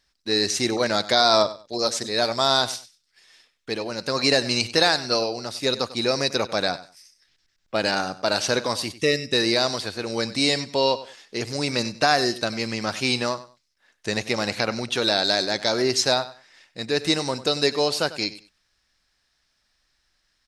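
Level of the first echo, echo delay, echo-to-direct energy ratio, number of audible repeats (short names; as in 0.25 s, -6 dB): -16.0 dB, 96 ms, -16.0 dB, 2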